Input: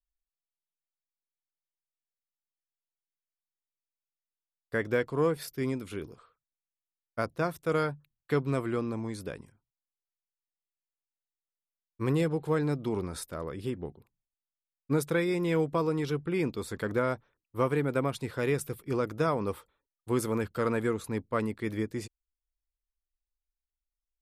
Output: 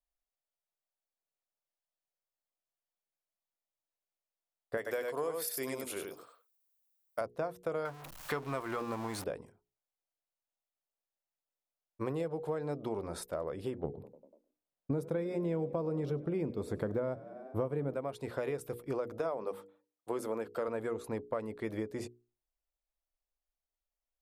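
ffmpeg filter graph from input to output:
-filter_complex "[0:a]asettb=1/sr,asplit=3[a][b][c];[a]atrim=end=4.774[d];[b]atrim=start=4.77:end=7.21,asetpts=PTS-STARTPTS,afade=t=in:d=0.004:c=qsin,afade=t=out:st=2.436:d=0.004:c=qsin,aemphasis=mode=production:type=riaa,aecho=1:1:93:0.562,atrim=end_sample=107604[e];[c]atrim=start=7.206[f];[d][e]acrossfade=d=0.004:c1=hsin:c2=qsin[g];[g][f]acrossfade=d=0.004:c1=qsin:c2=hsin,asettb=1/sr,asplit=3[h][i][j];[h]atrim=end=7.854[k];[i]atrim=start=7.85:end=9.24,asetpts=PTS-STARTPTS,afade=t=in:d=0.004:c=qsin,afade=t=out:st=1.386:d=0.004:c=qsin,aeval=exprs='val(0)+0.5*0.0112*sgn(val(0))':c=same,acontrast=32,lowshelf=f=790:t=q:w=1.5:g=-7[l];[j]atrim=start=9.236[m];[k][l]acrossfade=d=0.004:c1=hsin:c2=qsin[n];[n][m]acrossfade=d=0.004:c1=qsin:c2=hsin,asettb=1/sr,asplit=3[o][p][q];[o]atrim=end=13.844[r];[p]atrim=start=13.84:end=17.94,asetpts=PTS-STARTPTS,afade=t=in:d=0.004:c=qsin,afade=t=out:st=4.096:d=0.004:c=qsin,equalizer=f=130:w=0.32:g=13.5,asplit=6[s][t][u][v][w][x];[t]adelay=97,afreqshift=31,volume=-23dB[y];[u]adelay=194,afreqshift=62,volume=-26.9dB[z];[v]adelay=291,afreqshift=93,volume=-30.8dB[aa];[w]adelay=388,afreqshift=124,volume=-34.6dB[ab];[x]adelay=485,afreqshift=155,volume=-38.5dB[ac];[s][y][z][aa][ab][ac]amix=inputs=6:normalize=0,atrim=end_sample=180810[ad];[q]atrim=start=17.936[ae];[r][ad]acrossfade=d=0.004:c1=hsin:c2=qsin[af];[af][ae]acrossfade=d=0.004:c1=qsin:c2=hsin,asettb=1/sr,asplit=3[ag][ah][ai];[ag]atrim=end=19.194[aj];[ah]atrim=start=19.19:end=20.68,asetpts=PTS-STARTPTS,afade=t=in:d=0.004:c=qsin,afade=t=out:st=1.486:d=0.004:c=qsin,highpass=190,bandreject=f=50:t=h:w=6,bandreject=f=100:t=h:w=6,bandreject=f=150:t=h:w=6,bandreject=f=200:t=h:w=6,bandreject=f=250:t=h:w=6,bandreject=f=300:t=h:w=6[ak];[ai]atrim=start=20.676[al];[aj][ak]acrossfade=d=0.004:c1=hsin:c2=qsin[am];[am][al]acrossfade=d=0.004:c1=qsin:c2=hsin,equalizer=f=630:w=1.1:g=13,bandreject=f=60:t=h:w=6,bandreject=f=120:t=h:w=6,bandreject=f=180:t=h:w=6,bandreject=f=240:t=h:w=6,bandreject=f=300:t=h:w=6,bandreject=f=360:t=h:w=6,bandreject=f=420:t=h:w=6,bandreject=f=480:t=h:w=6,acompressor=threshold=-28dB:ratio=6,volume=-4.5dB"

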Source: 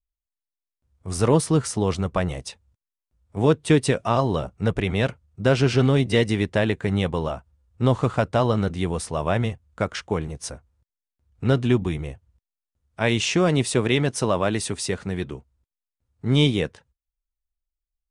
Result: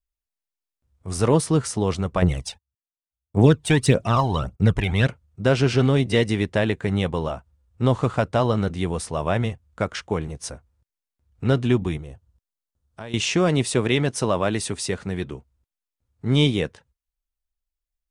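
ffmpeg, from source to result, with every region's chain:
-filter_complex "[0:a]asettb=1/sr,asplit=3[a][b][c];[a]atrim=end=2.224[d];[b]atrim=start=2.22:end=5.07,asetpts=PTS-STARTPTS,afade=t=in:d=0.004:c=qsin,afade=t=out:st=2.846:d=0.004:c=qsin,agate=range=-31dB:threshold=-55dB:ratio=16:release=100:detection=peak,aphaser=in_gain=1:out_gain=1:delay=1.4:decay=0.64:speed=1.7:type=triangular[e];[c]atrim=start=5.066[f];[d][e]acrossfade=d=0.004:c1=hsin:c2=qsin[g];[g][f]acrossfade=d=0.004:c1=qsin:c2=hsin,asettb=1/sr,asplit=3[h][i][j];[h]atrim=end=11.974[k];[i]atrim=start=11.97:end=13.14,asetpts=PTS-STARTPTS,afade=t=in:d=0.004:c=qsin,afade=t=out:st=1.166:d=0.004:c=qsin,acompressor=threshold=-33dB:ratio=4:attack=3.2:release=140:knee=1:detection=peak,equalizer=f=2.2k:w=2.5:g=-7[l];[j]atrim=start=13.136[m];[k][l]acrossfade=d=0.004:c1=hsin:c2=qsin[n];[n][m]acrossfade=d=0.004:c1=qsin:c2=hsin"

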